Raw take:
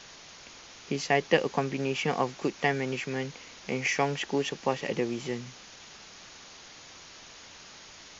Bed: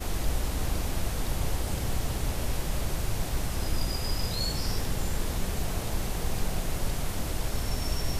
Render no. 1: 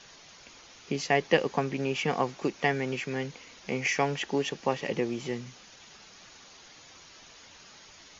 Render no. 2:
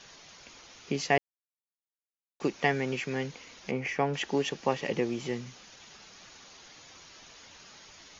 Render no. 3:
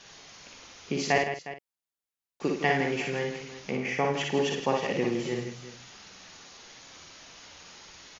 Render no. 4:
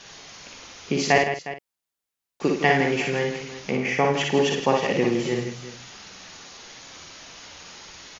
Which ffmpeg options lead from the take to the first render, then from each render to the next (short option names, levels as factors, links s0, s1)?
-af "afftdn=nr=6:nf=-50"
-filter_complex "[0:a]asettb=1/sr,asplit=3[s0][s1][s2];[s0]atrim=end=3.714[s3];[s1]atrim=start=3.71:end=4.14,asetpts=PTS-STARTPTS,afade=t=in:d=0.004:c=qsin,afade=t=out:st=0.426:d=0.004:c=qsin,lowpass=f=1300:p=1[s4];[s2]atrim=start=4.136[s5];[s3][s4]acrossfade=d=0.004:c1=hsin:c2=qsin[s6];[s6][s5]acrossfade=d=0.004:c1=qsin:c2=hsin,asplit=3[s7][s8][s9];[s7]atrim=end=1.18,asetpts=PTS-STARTPTS,afade=t=out:st=1.176:d=0.004:c=hsin[s10];[s8]atrim=start=1.18:end=2.4,asetpts=PTS-STARTPTS,volume=0[s11];[s9]atrim=start=2.4,asetpts=PTS-STARTPTS,afade=t=in:d=0.004:c=hsin[s12];[s10][s11][s12]concat=n=3:v=0:a=1"
-filter_complex "[0:a]asplit=2[s0][s1];[s1]adelay=48,volume=0.376[s2];[s0][s2]amix=inputs=2:normalize=0,asplit=2[s3][s4];[s4]aecho=0:1:59|162|359:0.668|0.355|0.188[s5];[s3][s5]amix=inputs=2:normalize=0"
-af "volume=2"